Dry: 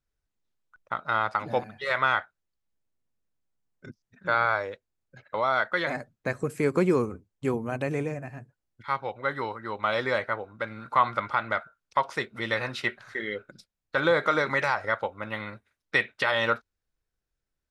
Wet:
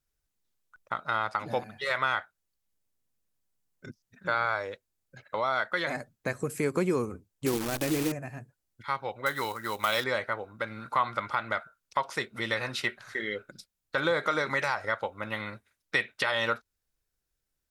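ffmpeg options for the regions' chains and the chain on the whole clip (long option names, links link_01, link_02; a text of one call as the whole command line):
ffmpeg -i in.wav -filter_complex "[0:a]asettb=1/sr,asplit=3[link_01][link_02][link_03];[link_01]atrim=end=7.464[link_04];[link_02]atrim=start=7.46:end=8.12,asetpts=PTS-STARTPTS,afade=type=in:duration=0.004:curve=qsin,afade=type=out:start_time=0.656:duration=0.004:curve=qsin,equalizer=frequency=320:width=6.3:gain=14.5,acrusher=bits=6:dc=4:mix=0:aa=0.000001[link_05];[link_03]atrim=start=8.116[link_06];[link_04][link_05]acrossfade=duration=0.004:curve1=hsin:curve2=qsin[link_07];[link_07][link_06]acrossfade=duration=0.004:curve1=qsin:curve2=hsin,asettb=1/sr,asplit=3[link_08][link_09][link_10];[link_08]atrim=end=9.264[link_11];[link_09]atrim=start=9.26:end=10.04,asetpts=PTS-STARTPTS,afade=type=in:duration=0.004:curve=qsin,afade=type=out:start_time=0.776:duration=0.004:curve=qsin,highshelf=frequency=2100:gain=9.5,acrusher=bits=5:mode=log:mix=0:aa=0.000001[link_12];[link_10]atrim=start=10.036[link_13];[link_11][link_12]acrossfade=duration=0.004:curve1=hsin:curve2=qsin[link_14];[link_14][link_13]acrossfade=duration=0.004:curve1=qsin:curve2=hsin,aemphasis=mode=production:type=cd,acompressor=threshold=-30dB:ratio=1.5" out.wav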